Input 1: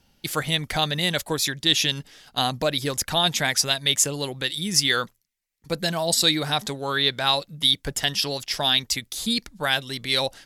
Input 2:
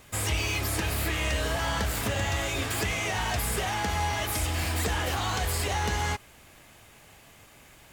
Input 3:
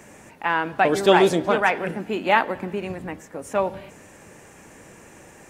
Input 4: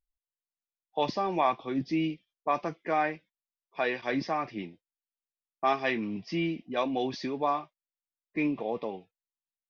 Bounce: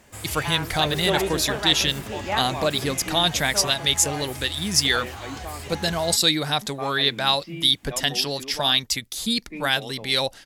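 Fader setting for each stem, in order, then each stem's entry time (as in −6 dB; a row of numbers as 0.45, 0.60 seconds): +0.5, −8.0, −9.0, −7.0 decibels; 0.00, 0.00, 0.00, 1.15 seconds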